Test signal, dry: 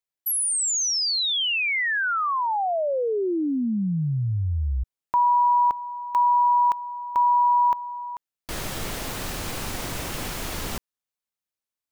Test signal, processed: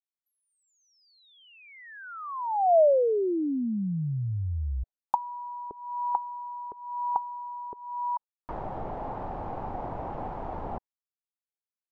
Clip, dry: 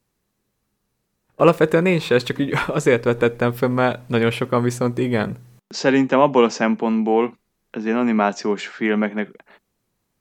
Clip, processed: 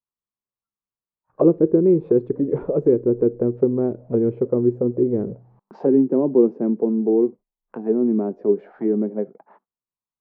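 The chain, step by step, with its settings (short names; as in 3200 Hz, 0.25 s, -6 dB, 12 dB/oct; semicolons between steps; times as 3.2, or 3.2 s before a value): spectral noise reduction 25 dB; envelope low-pass 360–1100 Hz down, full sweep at -15.5 dBFS; gain -5.5 dB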